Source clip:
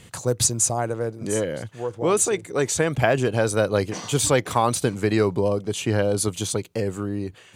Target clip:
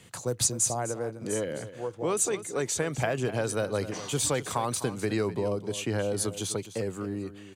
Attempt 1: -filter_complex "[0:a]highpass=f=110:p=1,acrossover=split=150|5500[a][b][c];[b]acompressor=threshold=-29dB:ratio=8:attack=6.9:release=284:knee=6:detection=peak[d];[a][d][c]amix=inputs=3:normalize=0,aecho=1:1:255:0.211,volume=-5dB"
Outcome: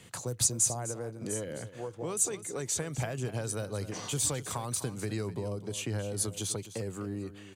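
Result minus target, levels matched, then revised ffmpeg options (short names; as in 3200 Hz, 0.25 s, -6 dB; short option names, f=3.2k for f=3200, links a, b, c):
compressor: peak gain reduction +10 dB
-filter_complex "[0:a]highpass=f=110:p=1,acrossover=split=150|5500[a][b][c];[b]acompressor=threshold=-17.5dB:ratio=8:attack=6.9:release=284:knee=6:detection=peak[d];[a][d][c]amix=inputs=3:normalize=0,aecho=1:1:255:0.211,volume=-5dB"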